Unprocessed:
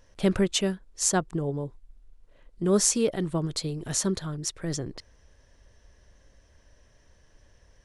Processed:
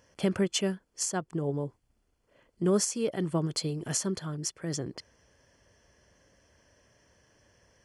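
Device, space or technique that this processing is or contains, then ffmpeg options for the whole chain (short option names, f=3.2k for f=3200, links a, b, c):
PA system with an anti-feedback notch: -af "highpass=110,asuperstop=centerf=3800:order=12:qfactor=7.9,alimiter=limit=-17dB:level=0:latency=1:release=452"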